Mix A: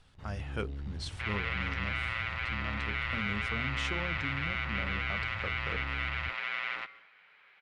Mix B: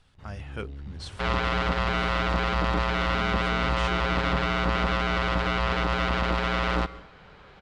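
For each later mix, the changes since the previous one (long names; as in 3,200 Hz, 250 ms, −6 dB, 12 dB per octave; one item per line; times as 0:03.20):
second sound: remove resonant band-pass 2,200 Hz, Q 3.1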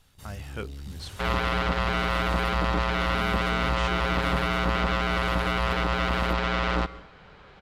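first sound: remove low-pass filter 2,100 Hz 12 dB per octave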